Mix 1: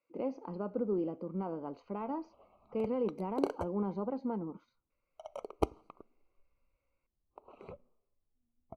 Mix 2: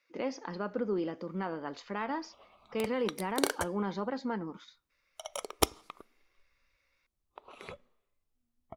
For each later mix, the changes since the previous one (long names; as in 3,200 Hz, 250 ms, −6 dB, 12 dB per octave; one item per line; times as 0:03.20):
master: remove moving average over 25 samples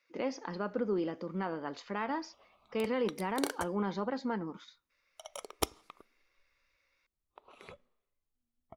background −5.5 dB